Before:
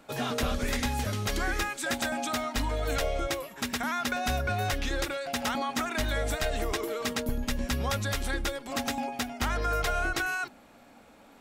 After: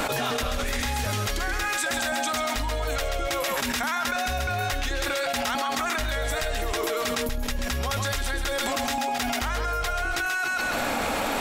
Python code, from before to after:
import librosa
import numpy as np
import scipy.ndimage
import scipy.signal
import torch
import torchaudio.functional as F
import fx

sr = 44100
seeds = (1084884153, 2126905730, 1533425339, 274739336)

y = fx.peak_eq(x, sr, hz=200.0, db=-7.0, octaves=2.1)
y = fx.echo_thinned(y, sr, ms=133, feedback_pct=25, hz=690.0, wet_db=-6)
y = fx.env_flatten(y, sr, amount_pct=100)